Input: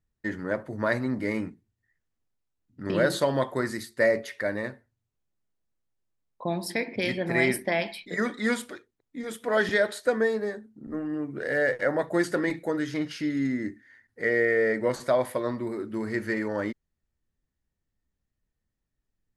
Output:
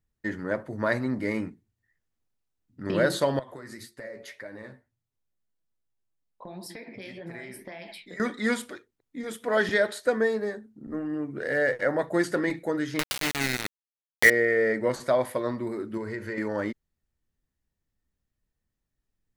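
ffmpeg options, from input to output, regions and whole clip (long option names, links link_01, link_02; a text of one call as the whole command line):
ffmpeg -i in.wav -filter_complex "[0:a]asettb=1/sr,asplit=3[link_01][link_02][link_03];[link_01]atrim=end=3.394[link_04];[link_02]atrim=start=3.39:end=8.2,asetpts=PTS-STARTPTS,afade=type=in:duration=0.004:curve=qsin,afade=type=out:start_time=4.806:duration=0.004:curve=qsin,acompressor=threshold=-33dB:ratio=8:attack=3.2:release=140:knee=1:detection=peak,flanger=delay=6:depth=9.7:regen=39:speed=1.8:shape=sinusoidal[link_05];[link_03]atrim=start=8.196[link_06];[link_04][link_05]acrossfade=duration=0.004:curve1=hsin:curve2=qsin[link_07];[link_07][link_06]acrossfade=duration=0.004:curve1=qsin:curve2=hsin,asettb=1/sr,asplit=3[link_08][link_09][link_10];[link_08]atrim=end=12.994[link_11];[link_09]atrim=start=12.99:end=14.3,asetpts=PTS-STARTPTS,afade=type=in:duration=0.004:curve=qsin,afade=type=out:start_time=1.306:duration=0.004:curve=qsin,equalizer=frequency=2800:width_type=o:width=2.8:gain=14.5,aeval=exprs='val(0)*gte(abs(val(0)),0.1)':channel_layout=same,acompressor=mode=upward:threshold=-23dB:ratio=2.5:attack=3.2:release=140:knee=2.83:detection=peak[link_12];[link_10]atrim=start=14.296[link_13];[link_11][link_12]acrossfade=duration=0.004:curve1=hsin:curve2=qsin[link_14];[link_14][link_13]acrossfade=duration=0.004:curve1=qsin:curve2=hsin,asettb=1/sr,asplit=3[link_15][link_16][link_17];[link_15]atrim=end=15.974[link_18];[link_16]atrim=start=15.97:end=16.38,asetpts=PTS-STARTPTS,afade=type=in:duration=0.004:curve=qsin,afade=type=out:start_time=0.406:duration=0.004:curve=qsin,highshelf=frequency=5400:gain=-7,aecho=1:1:2:0.45,atrim=end_sample=18081,acompressor=threshold=-29dB:ratio=6:attack=3.2:release=140:knee=1:detection=peak[link_19];[link_17]atrim=start=16.376[link_20];[link_18][link_19]acrossfade=duration=0.004:curve1=hsin:curve2=qsin[link_21];[link_21][link_20]acrossfade=duration=0.004:curve1=qsin:curve2=hsin" out.wav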